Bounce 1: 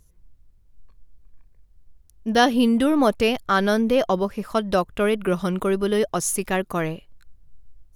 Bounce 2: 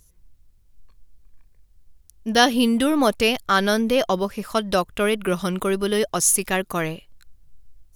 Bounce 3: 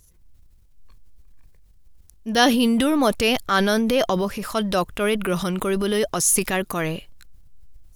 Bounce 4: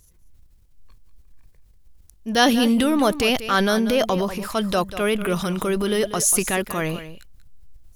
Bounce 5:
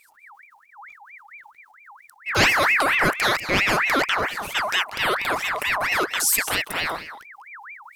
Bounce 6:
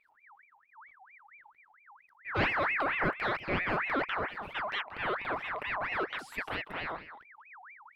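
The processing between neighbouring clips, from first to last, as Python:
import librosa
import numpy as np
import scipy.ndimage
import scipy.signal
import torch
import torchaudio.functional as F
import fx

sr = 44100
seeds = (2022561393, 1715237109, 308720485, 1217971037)

y1 = fx.high_shelf(x, sr, hz=2100.0, db=8.5)
y1 = y1 * 10.0 ** (-1.0 / 20.0)
y2 = fx.transient(y1, sr, attack_db=-3, sustain_db=7)
y3 = y2 + 10.0 ** (-13.0 / 20.0) * np.pad(y2, (int(190 * sr / 1000.0), 0))[:len(y2)]
y4 = fx.ring_lfo(y3, sr, carrier_hz=1600.0, swing_pct=50, hz=4.4)
y4 = y4 * 10.0 ** (1.5 / 20.0)
y5 = fx.air_absorb(y4, sr, metres=440.0)
y5 = fx.record_warp(y5, sr, rpm=45.0, depth_cents=160.0)
y5 = y5 * 10.0 ** (-7.5 / 20.0)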